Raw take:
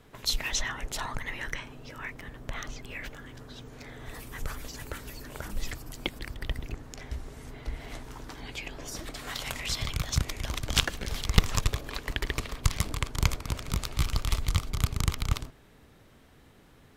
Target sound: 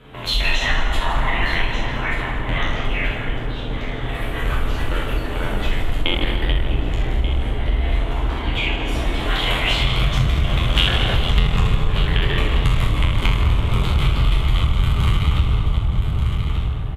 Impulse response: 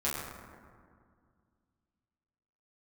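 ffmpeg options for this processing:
-filter_complex "[0:a]aecho=1:1:1185:0.224[a];[1:a]atrim=start_sample=2205,asetrate=26460,aresample=44100[b];[a][b]afir=irnorm=-1:irlink=0,acompressor=threshold=-19dB:ratio=4,highshelf=f=4.1k:t=q:w=3:g=-9,volume=5dB"

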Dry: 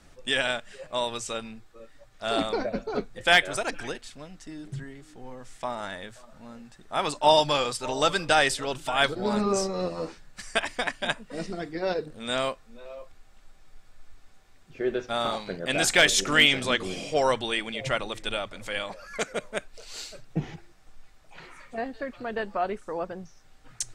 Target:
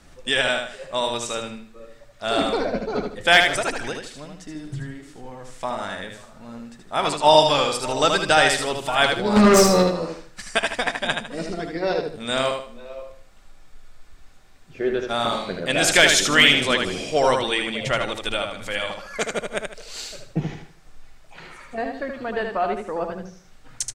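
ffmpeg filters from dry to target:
-filter_complex "[0:a]asplit=3[a][b][c];[a]afade=t=out:st=9.35:d=0.02[d];[b]aeval=exprs='0.178*sin(PI/2*2.24*val(0)/0.178)':c=same,afade=t=in:st=9.35:d=0.02,afade=t=out:st=9.82:d=0.02[e];[c]afade=t=in:st=9.82:d=0.02[f];[d][e][f]amix=inputs=3:normalize=0,aecho=1:1:77|154|231|308:0.562|0.18|0.0576|0.0184,volume=4dB"

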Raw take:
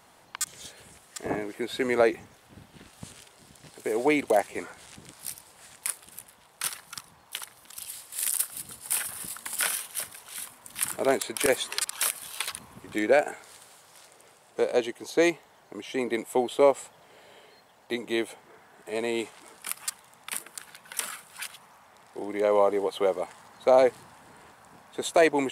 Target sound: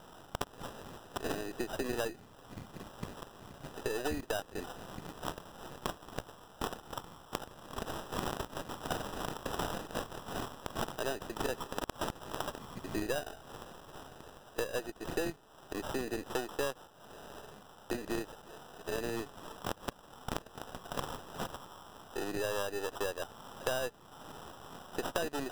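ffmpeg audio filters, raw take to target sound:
-af "aeval=exprs='if(lt(val(0),0),0.447*val(0),val(0))':c=same,acrusher=samples=20:mix=1:aa=0.000001,acompressor=threshold=-39dB:ratio=5,volume=5.5dB"

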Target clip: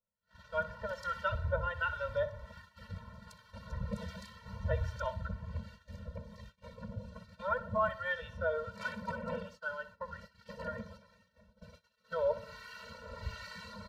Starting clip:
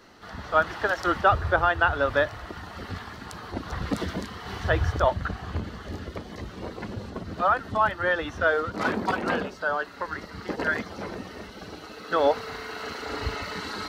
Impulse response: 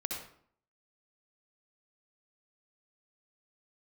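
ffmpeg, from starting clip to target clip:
-filter_complex "[0:a]asettb=1/sr,asplit=3[a][b][c];[a]atrim=end=7.484[d];[b]atrim=start=7.48:end=7.89,asetpts=PTS-STARTPTS,afade=t=in:d=0.004:c=qsin,afade=t=out:st=0.406:d=0.004:c=qsin,equalizer=f=570:t=o:w=2.9:g=6.5[e];[c]atrim=start=7.886[f];[d][e]acrossfade=d=0.004:c1=hsin:c2=qsin[g];[g][f]acrossfade=d=0.004:c1=qsin:c2=hsin,acrossover=split=1100[h][i];[h]aeval=exprs='val(0)*(1-0.7/2+0.7/2*cos(2*PI*1.3*n/s))':c=same[j];[i]aeval=exprs='val(0)*(1-0.7/2-0.7/2*cos(2*PI*1.3*n/s))':c=same[k];[j][k]amix=inputs=2:normalize=0,lowshelf=f=93:g=3.5,aecho=1:1:63|126|189|252:0.178|0.0782|0.0344|0.0151,agate=range=-31dB:threshold=-42dB:ratio=16:detection=peak,asettb=1/sr,asplit=3[l][m][n];[l]atrim=end=10.974[o];[m]atrim=start=10.97:end=11.62,asetpts=PTS-STARTPTS,afade=t=in:d=0.004:c=qsin,afade=t=out:st=0.646:d=0.004:c=qsin,acompressor=threshold=-57dB:ratio=2.5[p];[n]atrim=start=11.616[q];[o][p]acrossfade=d=0.004:c1=hsin:c2=qsin[r];[r][q]acrossfade=d=0.004:c1=qsin:c2=hsin,afftfilt=real='re*eq(mod(floor(b*sr/1024/220),2),0)':imag='im*eq(mod(floor(b*sr/1024/220),2),0)':win_size=1024:overlap=0.75,volume=-7dB"

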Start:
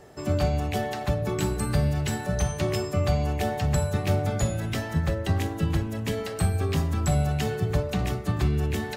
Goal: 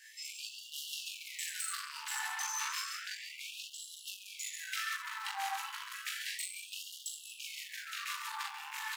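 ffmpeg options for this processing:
-filter_complex "[0:a]acrossover=split=180|1100|3200[a][b][c][d];[a]lowshelf=f=63:g=-10[e];[b]aeval=exprs='0.0398*(abs(mod(val(0)/0.0398+3,4)-2)-1)':c=same[f];[e][f][c][d]amix=inputs=4:normalize=0,asettb=1/sr,asplit=3[g][h][i];[g]atrim=end=2.914[j];[h]atrim=start=2.91:end=4.08,asetpts=PTS-STARTPTS,afade=t=in:d=0.004:c=qsin,afade=t=out:st=1.166:d=0.004:c=qsin,acrossover=split=7300[k][l];[l]acompressor=threshold=-48dB:ratio=4:attack=1:release=60[m];[k][m]amix=inputs=2:normalize=0[n];[i]atrim=start=4.076[o];[j][n]acrossfade=d=0.004:c1=hsin:c2=qsin[p];[p][o]acrossfade=d=0.004:c1=qsin:c2=hsin,aecho=1:1:135:0.473,acrusher=bits=9:mode=log:mix=0:aa=0.000001,aecho=1:1:40.82|78.72:0.891|0.355,acompressor=threshold=-26dB:ratio=6,asettb=1/sr,asplit=3[q][r][s];[q]atrim=end=0.724[t];[r]atrim=start=0.72:end=2.21,asetpts=PTS-STARTPTS,afade=t=in:d=0.004:c=qsin,afade=t=out:st=1.486:d=0.004:c=qsin,aecho=1:1:6.1:0.9,atrim=end_sample=65709[u];[s]atrim=start=2.206[v];[t][u]acrossfade=d=0.004:c1=hsin:c2=qsin[w];[w][v]acrossfade=d=0.004:c1=qsin:c2=hsin,flanger=delay=19:depth=2.3:speed=2.4,asoftclip=type=tanh:threshold=-35.5dB,afftfilt=real='re*gte(b*sr/1024,760*pow(2800/760,0.5+0.5*sin(2*PI*0.32*pts/sr)))':imag='im*gte(b*sr/1024,760*pow(2800/760,0.5+0.5*sin(2*PI*0.32*pts/sr)))':win_size=1024:overlap=0.75,volume=6.5dB"

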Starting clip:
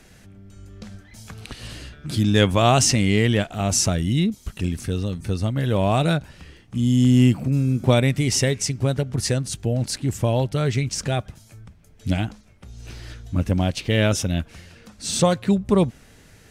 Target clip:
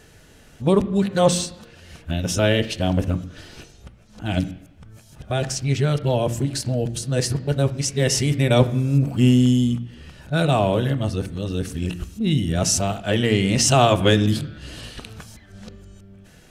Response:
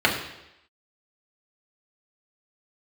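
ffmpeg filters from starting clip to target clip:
-filter_complex "[0:a]areverse,bandreject=f=58.15:t=h:w=4,bandreject=f=116.3:t=h:w=4,bandreject=f=174.45:t=h:w=4,bandreject=f=232.6:t=h:w=4,bandreject=f=290.75:t=h:w=4,bandreject=f=348.9:t=h:w=4,asplit=2[a][b];[1:a]atrim=start_sample=2205,lowpass=4.7k[c];[b][c]afir=irnorm=-1:irlink=0,volume=-26dB[d];[a][d]amix=inputs=2:normalize=0"

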